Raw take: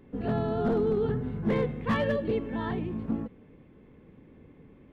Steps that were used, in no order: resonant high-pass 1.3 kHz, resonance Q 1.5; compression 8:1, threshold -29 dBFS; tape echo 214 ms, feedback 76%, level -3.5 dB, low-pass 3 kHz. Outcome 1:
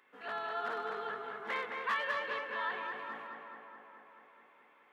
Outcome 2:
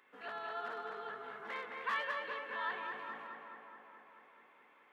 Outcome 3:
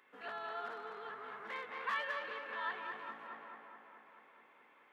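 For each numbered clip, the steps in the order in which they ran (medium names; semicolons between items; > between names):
resonant high-pass > tape echo > compression; compression > resonant high-pass > tape echo; tape echo > compression > resonant high-pass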